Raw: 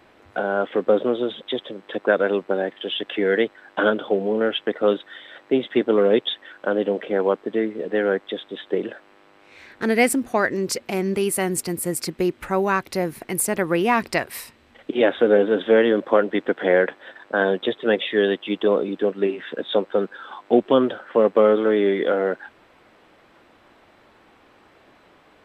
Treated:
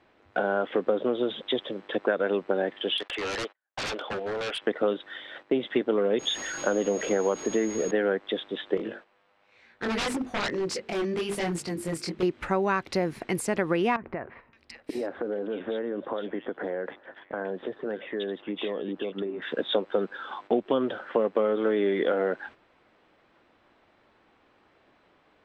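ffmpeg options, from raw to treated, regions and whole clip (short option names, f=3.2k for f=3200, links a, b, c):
-filter_complex "[0:a]asettb=1/sr,asplit=3[a][b][c];[a]atrim=end=2.974[d];[b]atrim=start=2.97:end=4.62,asetpts=PTS-STARTPTS,afade=t=in:d=0.004:c=qsin,afade=t=out:st=1.646:d=0.004:c=qsin,agate=range=-34dB:threshold=-41dB:ratio=16:release=100:detection=peak,highpass=580,lowpass=5.2k,aeval=exprs='0.0501*(abs(mod(val(0)/0.0501+3,4)-2)-1)':c=same[e];[c]atrim=start=4.616[f];[d][e]acrossfade=d=0.004:c1=hsin:c2=qsin[g];[g][f]acrossfade=d=0.004:c1=qsin:c2=hsin,asettb=1/sr,asplit=3[h][i][j];[h]atrim=end=6.194[k];[i]atrim=start=6.19:end=7.91,asetpts=PTS-STARTPTS,afade=t=in:d=0.004:c=qsin,afade=t=out:st=1.716:d=0.004:c=qsin,aeval=exprs='val(0)+0.5*0.0211*sgn(val(0))':c=same,aeval=exprs='val(0)+0.0224*sin(2*PI*6600*n/s)':c=same[l];[j]atrim=start=7.906[m];[k][l]acrossfade=d=0.004:c1=hsin:c2=qsin[n];[n][m]acrossfade=d=0.004:c1=qsin:c2=hsin,asettb=1/sr,asplit=3[o][p][q];[o]atrim=end=8.774[r];[p]atrim=start=8.77:end=12.23,asetpts=PTS-STARTPTS,afade=t=in:d=0.004:c=qsin,afade=t=out:st=3.456:d=0.004:c=qsin,bandreject=f=50:t=h:w=6,bandreject=f=100:t=h:w=6,bandreject=f=150:t=h:w=6,bandreject=f=200:t=h:w=6,bandreject=f=250:t=h:w=6,bandreject=f=300:t=h:w=6,bandreject=f=350:t=h:w=6,bandreject=f=400:t=h:w=6,bandreject=f=450:t=h:w=6,flanger=delay=17.5:depth=6.9:speed=1.1,aeval=exprs='0.0708*(abs(mod(val(0)/0.0708+3,4)-2)-1)':c=same[s];[q]atrim=start=12.226[t];[r][s]acrossfade=d=0.004:c1=hsin:c2=qsin[u];[u][t]acrossfade=d=0.004:c1=qsin:c2=hsin,asettb=1/sr,asplit=3[v][w][x];[v]atrim=end=13.964[y];[w]atrim=start=13.96:end=19.42,asetpts=PTS-STARTPTS,afade=t=in:d=0.004:c=qsin,afade=t=out:st=5.456:d=0.004:c=qsin,highshelf=f=3.1k:g=-12,acompressor=threshold=-28dB:ratio=6:attack=3.2:release=140:knee=1:detection=peak,acrossover=split=2200[z][aa];[aa]adelay=570[ab];[z][ab]amix=inputs=2:normalize=0,atrim=end_sample=240786[ac];[x]atrim=start=19.416[ad];[y][ac]acrossfade=d=0.004:c1=hsin:c2=qsin[ae];[ae][ad]acrossfade=d=0.004:c1=qsin:c2=hsin,acompressor=threshold=-21dB:ratio=6,lowpass=5.9k,agate=range=-9dB:threshold=-45dB:ratio=16:detection=peak"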